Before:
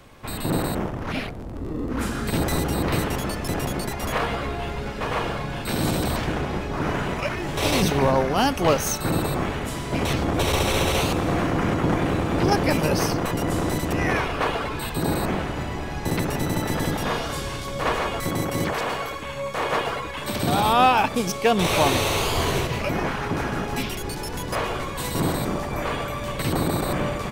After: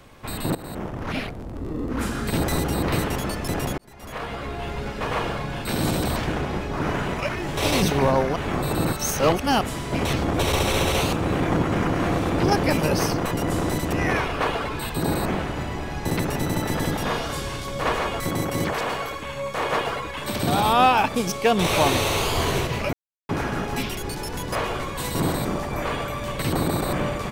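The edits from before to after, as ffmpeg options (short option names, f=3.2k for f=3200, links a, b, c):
-filter_complex "[0:a]asplit=9[a][b][c][d][e][f][g][h][i];[a]atrim=end=0.55,asetpts=PTS-STARTPTS,afade=t=out:st=0.546:d=0.004:c=hsin:silence=0.112202[j];[b]atrim=start=0.55:end=3.78,asetpts=PTS-STARTPTS,afade=t=in:d=0.49:silence=0.112202,afade=t=out:st=3.226:d=0.004:c=hsin[k];[c]atrim=start=3.78:end=8.362,asetpts=PTS-STARTPTS,afade=t=in:d=1.01[l];[d]atrim=start=8.358:end=9.612,asetpts=PTS-STARTPTS,areverse[m];[e]atrim=start=9.608:end=11.162[n];[f]atrim=start=11.158:end=12.302,asetpts=PTS-STARTPTS,areverse[o];[g]atrim=start=12.298:end=22.93,asetpts=PTS-STARTPTS,afade=t=out:st=10.628:d=0.004:c=hsin[p];[h]atrim=start=22.93:end=23.29,asetpts=PTS-STARTPTS,volume=0[q];[i]atrim=start=23.29,asetpts=PTS-STARTPTS,afade=t=in:d=0.004:c=hsin[r];[j][k][l]concat=n=3:v=0:a=1[s];[s][m]acrossfade=d=0.004:c1=hsin:c2=hsin[t];[t][n]acrossfade=d=0.004:c1=hsin:c2=hsin[u];[u][o]acrossfade=d=0.004:c1=hsin:c2=hsin[v];[p][q][r]concat=n=3:v=0:a=1[w];[v][w]acrossfade=d=0.004:c1=hsin:c2=hsin"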